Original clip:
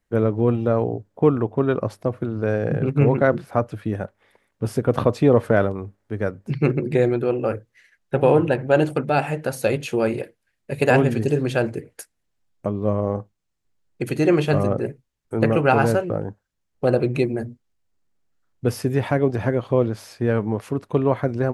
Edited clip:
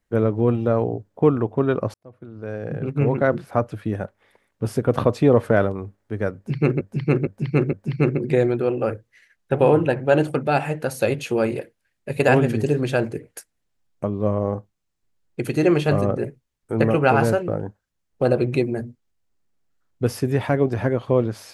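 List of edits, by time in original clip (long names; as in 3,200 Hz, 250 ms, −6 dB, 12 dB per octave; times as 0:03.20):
0:01.94–0:03.51: fade in
0:06.35–0:06.81: repeat, 4 plays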